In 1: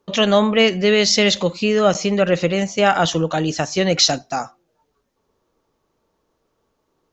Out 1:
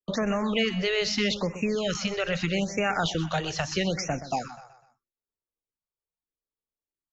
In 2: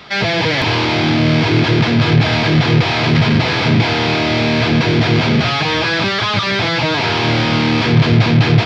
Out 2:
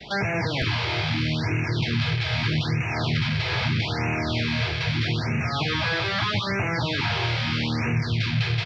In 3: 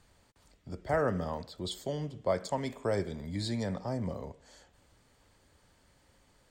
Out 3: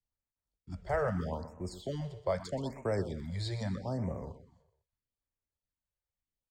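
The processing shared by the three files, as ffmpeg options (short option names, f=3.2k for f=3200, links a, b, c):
-filter_complex "[0:a]lowshelf=f=69:g=11,agate=range=-33dB:threshold=-39dB:ratio=3:detection=peak,highshelf=f=9.7k:g=-5.5,acrossover=split=160|1300|5500[a][b][c][d];[b]alimiter=limit=-16dB:level=0:latency=1:release=304[e];[a][e][c][d]amix=inputs=4:normalize=0,acrossover=split=1600|6400[f][g][h];[f]acompressor=threshold=-22dB:ratio=4[i];[g]acompressor=threshold=-27dB:ratio=4[j];[h]acompressor=threshold=-53dB:ratio=4[k];[i][j][k]amix=inputs=3:normalize=0,aecho=1:1:125|250|375|500:0.224|0.0918|0.0376|0.0154,afftfilt=real='re*(1-between(b*sr/1024,220*pow(4100/220,0.5+0.5*sin(2*PI*0.79*pts/sr))/1.41,220*pow(4100/220,0.5+0.5*sin(2*PI*0.79*pts/sr))*1.41))':imag='im*(1-between(b*sr/1024,220*pow(4100/220,0.5+0.5*sin(2*PI*0.79*pts/sr))/1.41,220*pow(4100/220,0.5+0.5*sin(2*PI*0.79*pts/sr))*1.41))':win_size=1024:overlap=0.75,volume=-2dB"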